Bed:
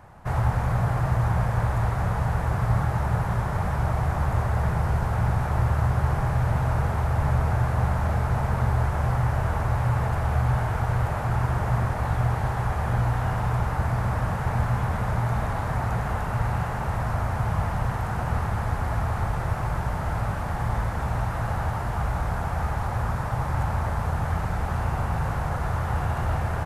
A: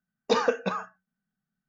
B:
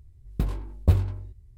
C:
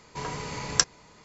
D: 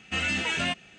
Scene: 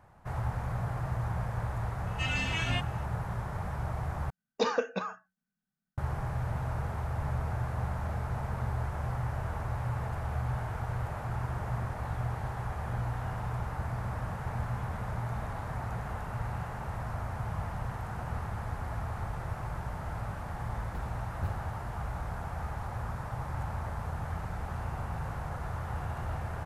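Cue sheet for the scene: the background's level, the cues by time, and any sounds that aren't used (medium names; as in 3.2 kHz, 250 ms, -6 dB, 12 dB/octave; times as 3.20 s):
bed -10 dB
2.07 s: add D -5 dB + harmonic-percussive separation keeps harmonic
4.30 s: replace with A -5 dB
20.55 s: add B -16.5 dB
not used: C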